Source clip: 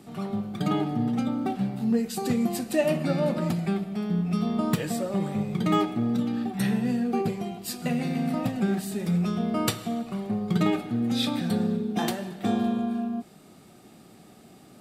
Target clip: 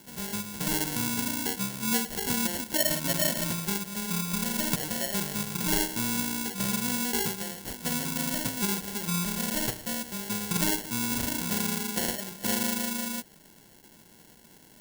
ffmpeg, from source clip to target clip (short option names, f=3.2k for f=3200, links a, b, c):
-af "acrusher=samples=36:mix=1:aa=0.000001,crystalizer=i=5:c=0,volume=-7dB"